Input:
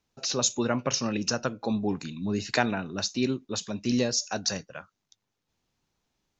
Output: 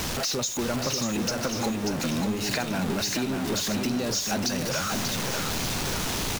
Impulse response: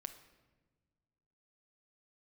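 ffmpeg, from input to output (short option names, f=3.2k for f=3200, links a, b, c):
-filter_complex "[0:a]aeval=exprs='val(0)+0.5*0.0668*sgn(val(0))':c=same,acompressor=threshold=-26dB:ratio=6,asplit=2[a][b];[b]aecho=0:1:589|1178|1767|2356|2945:0.531|0.239|0.108|0.0484|0.0218[c];[a][c]amix=inputs=2:normalize=0"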